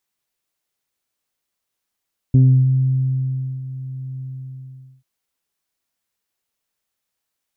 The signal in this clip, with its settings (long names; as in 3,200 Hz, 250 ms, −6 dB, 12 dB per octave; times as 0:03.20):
subtractive voice saw C3 24 dB per octave, low-pass 140 Hz, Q 0.71, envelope 1 octave, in 0.31 s, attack 4.3 ms, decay 1.27 s, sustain −16 dB, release 0.83 s, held 1.86 s